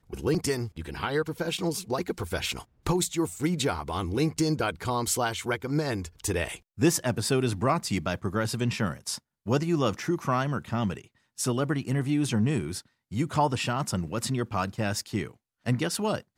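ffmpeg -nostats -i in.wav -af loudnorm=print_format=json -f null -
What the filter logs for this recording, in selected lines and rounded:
"input_i" : "-28.9",
"input_tp" : "-10.7",
"input_lra" : "2.3",
"input_thresh" : "-39.0",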